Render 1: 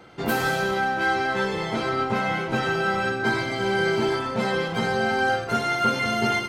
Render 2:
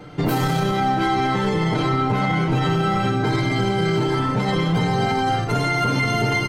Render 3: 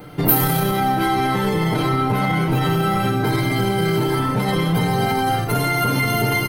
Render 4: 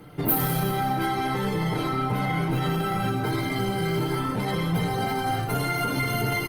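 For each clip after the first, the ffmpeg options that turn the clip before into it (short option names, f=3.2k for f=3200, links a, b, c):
-af "lowshelf=f=340:g=11.5,aecho=1:1:6.7:0.69,alimiter=limit=-14.5dB:level=0:latency=1:release=33,volume=2.5dB"
-af "aexciter=amount=6.9:drive=8.2:freq=9.9k,volume=1dB"
-af "aecho=1:1:175|350|525:0.178|0.0622|0.0218,flanger=delay=0.6:depth=7.4:regen=-66:speed=0.64:shape=triangular,volume=-2.5dB" -ar 48000 -c:a libopus -b:a 32k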